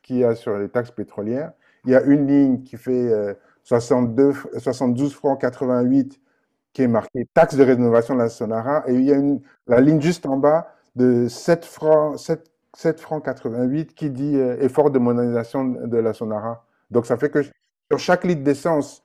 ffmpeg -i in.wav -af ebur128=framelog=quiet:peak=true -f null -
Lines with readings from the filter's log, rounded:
Integrated loudness:
  I:         -19.8 LUFS
  Threshold: -30.2 LUFS
Loudness range:
  LRA:         3.9 LU
  Threshold: -40.0 LUFS
  LRA low:   -22.0 LUFS
  LRA high:  -18.1 LUFS
True peak:
  Peak:       -1.7 dBFS